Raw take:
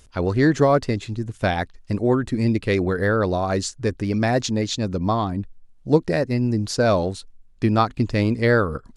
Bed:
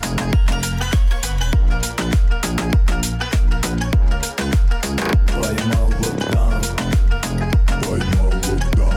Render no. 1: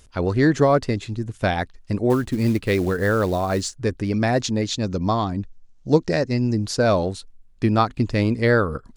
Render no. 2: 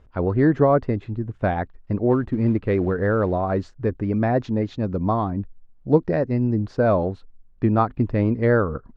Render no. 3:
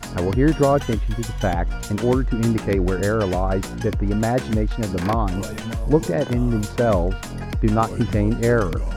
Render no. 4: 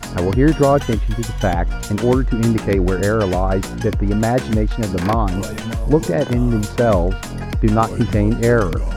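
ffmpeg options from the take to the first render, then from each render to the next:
-filter_complex "[0:a]asettb=1/sr,asplit=3[s0][s1][s2];[s0]atrim=end=2.104[s3];[s1]atrim=start=2.1:end=3.75,asetpts=PTS-STARTPTS,afade=t=in:d=0.004:c=qsin,afade=t=out:st=1.646:d=0.004:c=qsin,acrusher=bits=6:mode=log:mix=0:aa=0.000001[s4];[s2]atrim=start=3.746[s5];[s3][s4]acrossfade=d=0.004:c1=hsin:c2=qsin[s6];[s6][s5]acrossfade=d=0.004:c1=qsin:c2=hsin,asettb=1/sr,asplit=3[s7][s8][s9];[s7]atrim=end=4.834[s10];[s8]atrim=start=4.83:end=6.55,asetpts=PTS-STARTPTS,afade=t=in:d=0.004:c=qsin,afade=t=out:st=1.716:d=0.004:c=qsin,lowpass=f=6400:t=q:w=2.5[s11];[s9]atrim=start=6.546[s12];[s10][s11]acrossfade=d=0.004:c1=hsin:c2=qsin[s13];[s13][s12]acrossfade=d=0.004:c1=qsin:c2=hsin"
-af "lowpass=1400"
-filter_complex "[1:a]volume=0.316[s0];[0:a][s0]amix=inputs=2:normalize=0"
-af "volume=1.5,alimiter=limit=0.708:level=0:latency=1"

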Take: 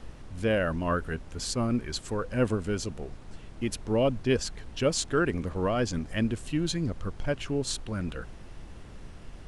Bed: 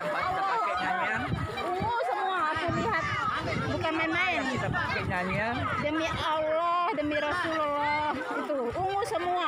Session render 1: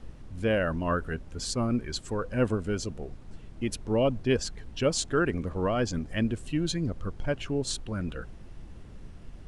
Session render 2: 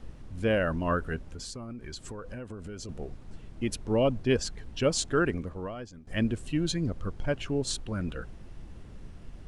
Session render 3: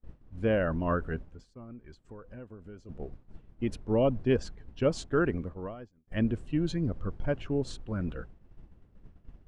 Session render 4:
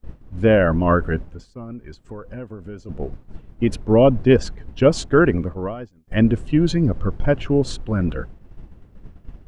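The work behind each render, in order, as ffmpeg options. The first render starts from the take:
-af "afftdn=nr=6:nf=-46"
-filter_complex "[0:a]asettb=1/sr,asplit=3[s0][s1][s2];[s0]atrim=end=1.284[s3];[s1]atrim=start=1.28:end=2.89,asetpts=PTS-STARTPTS,afade=t=in:d=0.004:c=qsin,afade=t=out:st=1.606:d=0.004:c=qsin,acompressor=threshold=0.0158:ratio=10:attack=3.2:release=140:knee=1:detection=peak[s4];[s2]atrim=start=2.886[s5];[s3][s4]acrossfade=d=0.004:c1=hsin:c2=qsin[s6];[s6][s5]acrossfade=d=0.004:c1=qsin:c2=hsin,asplit=2[s7][s8];[s7]atrim=end=6.07,asetpts=PTS-STARTPTS,afade=t=out:st=5.27:d=0.8:c=qua:silence=0.11885[s9];[s8]atrim=start=6.07,asetpts=PTS-STARTPTS,afade=t=in:d=0.004:c=hsin:silence=0.11885[s10];[s9][s10]concat=n=2:v=0:a=1"
-af "lowpass=f=1400:p=1,agate=range=0.0224:threshold=0.02:ratio=3:detection=peak"
-af "volume=3.98"

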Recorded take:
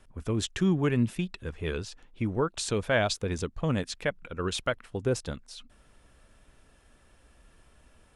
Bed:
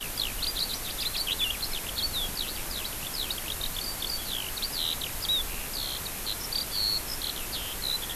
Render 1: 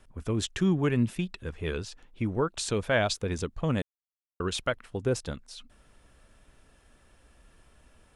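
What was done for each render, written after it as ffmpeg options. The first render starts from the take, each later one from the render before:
-filter_complex "[0:a]asplit=3[s0][s1][s2];[s0]atrim=end=3.82,asetpts=PTS-STARTPTS,afade=t=out:st=3.816:d=0.004:c=hsin[s3];[s1]atrim=start=3.82:end=4.4,asetpts=PTS-STARTPTS,volume=0[s4];[s2]atrim=start=4.4,asetpts=PTS-STARTPTS,afade=t=in:d=0.004:c=hsin[s5];[s3][s4][s5]concat=n=3:v=0:a=1"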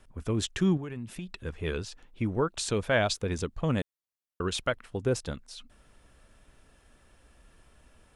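-filter_complex "[0:a]asettb=1/sr,asplit=3[s0][s1][s2];[s0]atrim=end=0.774[s3];[s1]atrim=start=0.77:end=1.28,asetpts=PTS-STARTPTS,afade=t=in:d=0.004:c=qsin,afade=t=out:st=0.506:d=0.004:c=qsin,acompressor=threshold=0.0224:ratio=12:attack=3.2:release=140:knee=1:detection=peak[s4];[s2]atrim=start=1.276[s5];[s3][s4]acrossfade=d=0.004:c1=hsin:c2=qsin[s6];[s6][s5]acrossfade=d=0.004:c1=qsin:c2=hsin"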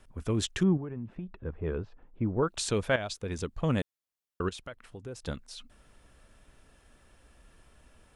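-filter_complex "[0:a]asettb=1/sr,asplit=3[s0][s1][s2];[s0]atrim=end=0.634[s3];[s1]atrim=start=0.63:end=2.43,asetpts=PTS-STARTPTS,afade=t=in:d=0.004:c=qsin,afade=t=out:st=1.796:d=0.004:c=qsin,lowpass=1100[s4];[s2]atrim=start=2.426[s5];[s3][s4]acrossfade=d=0.004:c1=hsin:c2=qsin[s6];[s6][s5]acrossfade=d=0.004:c1=qsin:c2=hsin,asettb=1/sr,asplit=3[s7][s8][s9];[s7]atrim=end=4.494[s10];[s8]atrim=start=4.49:end=5.22,asetpts=PTS-STARTPTS,afade=t=in:d=0.004:c=qsin,afade=t=out:st=0.726:d=0.004:c=qsin,acompressor=threshold=0.00355:ratio=2:attack=3.2:release=140:knee=1:detection=peak[s11];[s9]atrim=start=5.216[s12];[s10][s11]acrossfade=d=0.004:c1=hsin:c2=qsin[s13];[s13][s12]acrossfade=d=0.004:c1=qsin:c2=hsin,asplit=2[s14][s15];[s14]atrim=end=2.96,asetpts=PTS-STARTPTS,afade=t=out:st=2.956:d=0.004:c=hsin:silence=0.251189[s16];[s15]atrim=start=2.96,asetpts=PTS-STARTPTS,afade=t=in:d=0.68:silence=0.251189[s17];[s16][s17]concat=n=2:v=0:a=1"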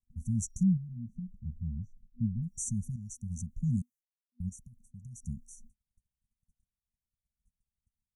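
-af "agate=range=0.02:threshold=0.00251:ratio=16:detection=peak,afftfilt=real='re*(1-between(b*sr/4096,240,5700))':imag='im*(1-between(b*sr/4096,240,5700))':win_size=4096:overlap=0.75"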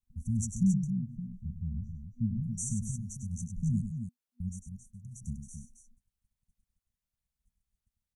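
-af "aecho=1:1:99.13|271.1:0.398|0.398"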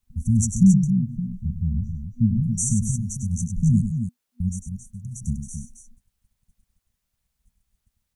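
-af "volume=3.76"

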